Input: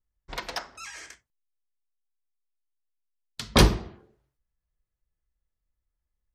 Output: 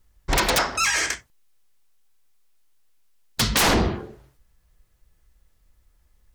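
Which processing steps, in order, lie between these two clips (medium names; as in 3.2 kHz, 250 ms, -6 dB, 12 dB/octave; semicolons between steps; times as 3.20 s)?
peak limiter -15 dBFS, peak gain reduction 11.5 dB; sine folder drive 17 dB, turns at -15 dBFS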